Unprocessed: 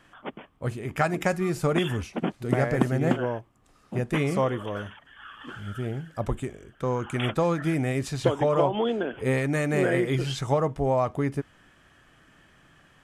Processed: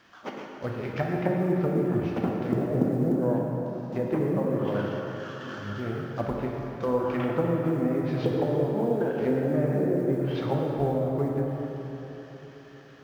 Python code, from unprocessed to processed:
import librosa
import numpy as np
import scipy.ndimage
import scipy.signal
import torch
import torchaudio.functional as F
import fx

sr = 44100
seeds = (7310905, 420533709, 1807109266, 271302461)

y = fx.cvsd(x, sr, bps=32000)
y = fx.env_lowpass_down(y, sr, base_hz=320.0, full_db=-19.5)
y = fx.highpass(y, sr, hz=180.0, slope=6)
y = fx.high_shelf(y, sr, hz=2000.0, db=-2.5)
y = fx.quant_companded(y, sr, bits=8)
y = fx.rev_plate(y, sr, seeds[0], rt60_s=3.9, hf_ratio=0.6, predelay_ms=0, drr_db=-1.5)